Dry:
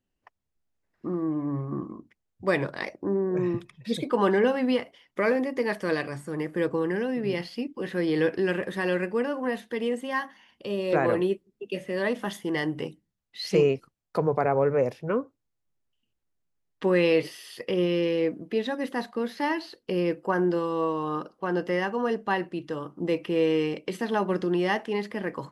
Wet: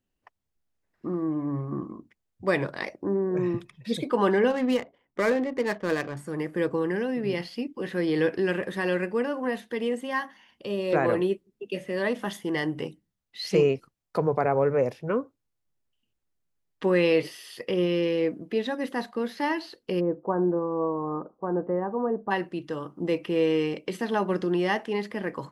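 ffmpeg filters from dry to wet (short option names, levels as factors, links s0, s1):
-filter_complex "[0:a]asettb=1/sr,asplit=3[s0][s1][s2];[s0]atrim=end=4.504[s3];[s1]atrim=start=4.5:end=6.17,asetpts=PTS-STARTPTS,afade=t=in:d=0.004:c=qsin,afade=t=out:st=1.666:d=0.004:c=qsin,adynamicsmooth=sensitivity=7:basefreq=900[s4];[s2]atrim=start=6.166[s5];[s3][s4]acrossfade=d=0.004:c1=hsin:c2=qsin[s6];[s6][s5]acrossfade=d=0.004:c1=qsin:c2=hsin,asplit=3[s7][s8][s9];[s7]afade=t=out:st=19.99:d=0.02[s10];[s8]lowpass=f=1100:w=0.5412,lowpass=f=1100:w=1.3066,afade=t=in:st=19.99:d=0.02,afade=t=out:st=22.3:d=0.02[s11];[s9]afade=t=in:st=22.3:d=0.02[s12];[s10][s11][s12]amix=inputs=3:normalize=0"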